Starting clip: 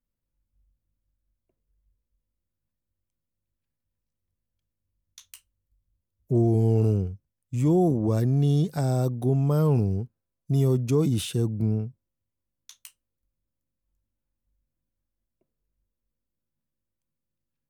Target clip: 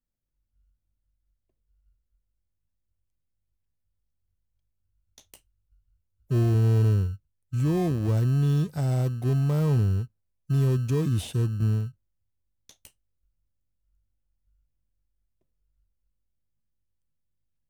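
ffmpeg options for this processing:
-filter_complex "[0:a]asubboost=boost=3:cutoff=120,asplit=2[a][b];[b]acrusher=samples=31:mix=1:aa=0.000001,volume=-9.5dB[c];[a][c]amix=inputs=2:normalize=0,volume=-5.5dB"

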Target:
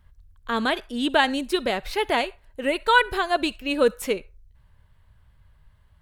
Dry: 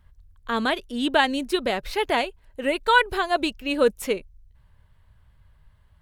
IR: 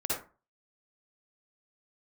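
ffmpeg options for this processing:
-filter_complex "[0:a]asplit=2[a][b];[b]highpass=1k[c];[1:a]atrim=start_sample=2205[d];[c][d]afir=irnorm=-1:irlink=0,volume=-24.5dB[e];[a][e]amix=inputs=2:normalize=0"

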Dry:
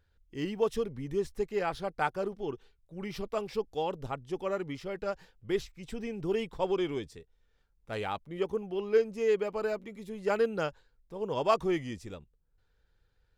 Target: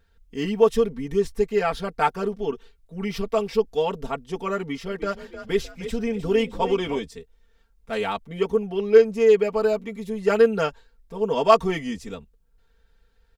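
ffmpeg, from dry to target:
-filter_complex "[0:a]aecho=1:1:4.4:1,asettb=1/sr,asplit=3[a][b][c];[a]atrim=end=4.594[d];[b]atrim=start=4.59:end=6.99,asetpts=PTS-STARTPTS,afade=t=in:d=0.004:c=qsin,afade=t=out:st=2.396:d=0.004:c=qsin,asplit=5[e][f][g][h][i];[f]adelay=307,afreqshift=35,volume=-11.5dB[j];[g]adelay=614,afreqshift=70,volume=-19.7dB[k];[h]adelay=921,afreqshift=105,volume=-27.9dB[l];[i]adelay=1228,afreqshift=140,volume=-36dB[m];[e][j][k][l][m]amix=inputs=5:normalize=0,atrim=end_sample=105840[n];[c]atrim=start=6.986[o];[d][n]acrossfade=d=0.004:c1=hsin:c2=qsin[p];[p][o]acrossfade=d=0.004:c1=qsin:c2=hsin,volume=5.5dB"

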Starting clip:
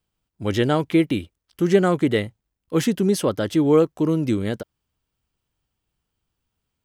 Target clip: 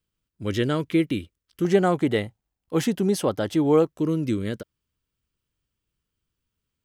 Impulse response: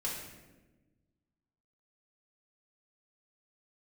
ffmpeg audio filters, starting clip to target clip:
-af "asetnsamples=n=441:p=0,asendcmd='1.65 equalizer g 6;3.89 equalizer g -11',equalizer=f=780:w=3:g=-11.5,volume=-3dB"

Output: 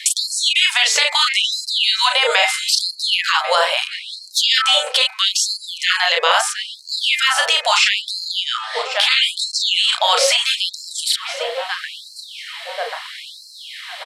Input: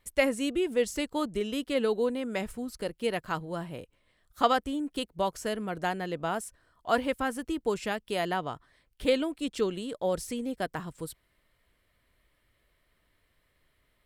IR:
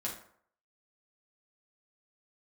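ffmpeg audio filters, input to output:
-filter_complex "[0:a]equalizer=f=3.8k:w=0.76:g=10.5,asplit=2[a][b];[b]adelay=34,volume=-6dB[c];[a][c]amix=inputs=2:normalize=0,bandreject=f=109.8:t=h:w=4,bandreject=f=219.6:t=h:w=4,bandreject=f=329.4:t=h:w=4,bandreject=f=439.2:t=h:w=4,bandreject=f=549:t=h:w=4,bandreject=f=658.8:t=h:w=4,bandreject=f=768.6:t=h:w=4,bandreject=f=878.4:t=h:w=4,bandreject=f=988.2:t=h:w=4,bandreject=f=1.098k:t=h:w=4,bandreject=f=1.2078k:t=h:w=4,bandreject=f=1.3176k:t=h:w=4,bandreject=f=1.4274k:t=h:w=4,bandreject=f=1.5372k:t=h:w=4,bandreject=f=1.647k:t=h:w=4,bandreject=f=1.7568k:t=h:w=4,bandreject=f=1.8666k:t=h:w=4,bandreject=f=1.9764k:t=h:w=4,bandreject=f=2.0862k:t=h:w=4,bandreject=f=2.196k:t=h:w=4,bandreject=f=2.3058k:t=h:w=4,bandreject=f=2.4156k:t=h:w=4,bandreject=f=2.5254k:t=h:w=4,asplit=2[d][e];[e]adelay=1088,lowpass=f=2k:p=1,volume=-21dB,asplit=2[f][g];[g]adelay=1088,lowpass=f=2k:p=1,volume=0.55,asplit=2[h][i];[i]adelay=1088,lowpass=f=2k:p=1,volume=0.55,asplit=2[j][k];[k]adelay=1088,lowpass=f=2k:p=1,volume=0.55[l];[f][h][j][l]amix=inputs=4:normalize=0[m];[d][m]amix=inputs=2:normalize=0,afftfilt=real='re*lt(hypot(re,im),0.158)':imag='im*lt(hypot(re,im),0.158)':win_size=1024:overlap=0.75,asoftclip=type=tanh:threshold=-14dB,acrossover=split=3500[n][o];[o]acompressor=threshold=-42dB:ratio=4:attack=1:release=60[p];[n][p]amix=inputs=2:normalize=0,lowpass=6.9k,highshelf=f=5.4k:g=6,acompressor=threshold=-47dB:ratio=2.5,alimiter=level_in=36dB:limit=-1dB:release=50:level=0:latency=1,afftfilt=real='re*gte(b*sr/1024,430*pow(4100/430,0.5+0.5*sin(2*PI*0.76*pts/sr)))':imag='im*gte(b*sr/1024,430*pow(4100/430,0.5+0.5*sin(2*PI*0.76*pts/sr)))':win_size=1024:overlap=0.75,volume=-2dB"

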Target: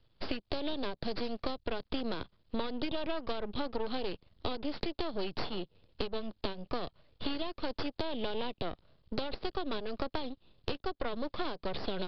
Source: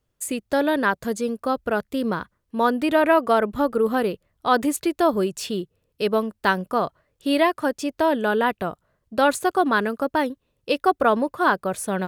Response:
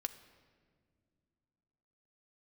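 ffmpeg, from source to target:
-filter_complex "[0:a]aexciter=amount=13.1:drive=5.1:freq=2.9k,aresample=11025,aeval=exprs='max(val(0),0)':c=same,aresample=44100,acompressor=threshold=-27dB:ratio=6,lowpass=f=4.3k:w=0.5412,lowpass=f=4.3k:w=1.3066,tiltshelf=f=720:g=6.5,acrossover=split=330|890[a][b][c];[a]acompressor=threshold=-39dB:ratio=4[d];[b]acompressor=threshold=-41dB:ratio=4[e];[c]acompressor=threshold=-43dB:ratio=4[f];[d][e][f]amix=inputs=3:normalize=0,volume=3dB"

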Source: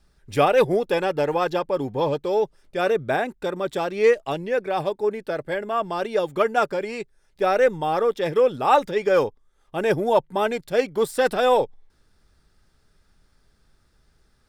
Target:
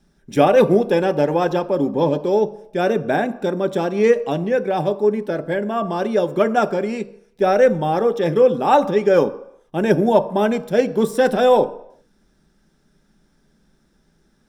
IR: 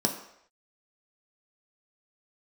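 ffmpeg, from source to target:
-filter_complex "[0:a]asplit=2[a][b];[1:a]atrim=start_sample=2205,lowshelf=f=340:g=9[c];[b][c]afir=irnorm=-1:irlink=0,volume=-14.5dB[d];[a][d]amix=inputs=2:normalize=0,volume=-1dB"

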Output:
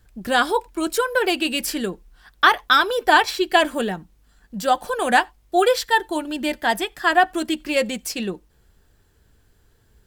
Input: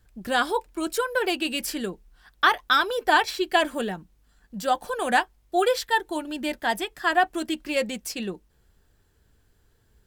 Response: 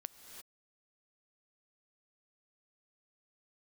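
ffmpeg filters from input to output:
-filter_complex "[0:a]asplit=2[a][b];[1:a]atrim=start_sample=2205,atrim=end_sample=4410[c];[b][c]afir=irnorm=-1:irlink=0,volume=-0.5dB[d];[a][d]amix=inputs=2:normalize=0,volume=1dB"

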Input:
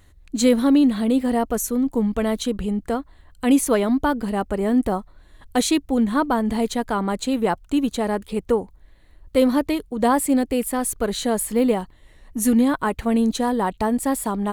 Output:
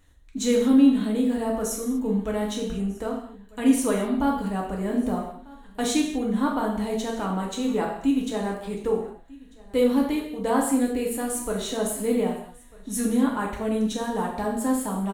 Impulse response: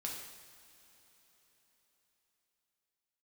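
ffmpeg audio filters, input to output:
-filter_complex "[0:a]aecho=1:1:1195:0.0708[a];[1:a]atrim=start_sample=2205,afade=t=out:st=0.44:d=0.01,atrim=end_sample=19845,asetrate=70560,aresample=44100[b];[a][b]afir=irnorm=-1:irlink=0,asetrate=42336,aresample=44100"

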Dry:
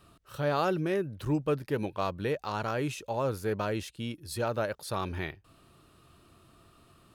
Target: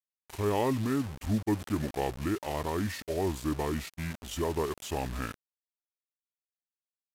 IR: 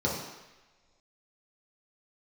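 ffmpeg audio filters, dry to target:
-af "acrusher=bits=6:mix=0:aa=0.000001,asetrate=31183,aresample=44100,atempo=1.41421"

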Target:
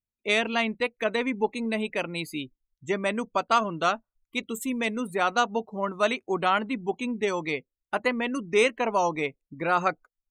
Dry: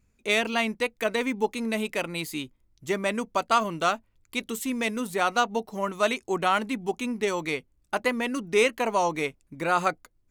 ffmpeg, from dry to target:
-af "afftdn=nr=29:nf=-40"

